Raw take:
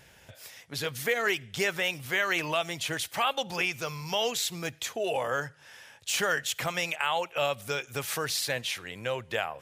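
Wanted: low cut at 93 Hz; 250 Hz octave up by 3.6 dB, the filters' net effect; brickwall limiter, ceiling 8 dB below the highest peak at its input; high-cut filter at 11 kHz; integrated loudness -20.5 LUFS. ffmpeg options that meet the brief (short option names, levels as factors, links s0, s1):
-af "highpass=93,lowpass=11000,equalizer=f=250:t=o:g=6,volume=3.76,alimiter=limit=0.355:level=0:latency=1"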